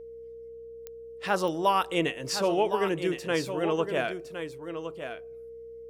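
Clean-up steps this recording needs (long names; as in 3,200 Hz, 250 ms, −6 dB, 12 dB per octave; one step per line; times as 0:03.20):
click removal
hum removal 63.2 Hz, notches 5
notch filter 460 Hz, Q 30
echo removal 1,062 ms −9 dB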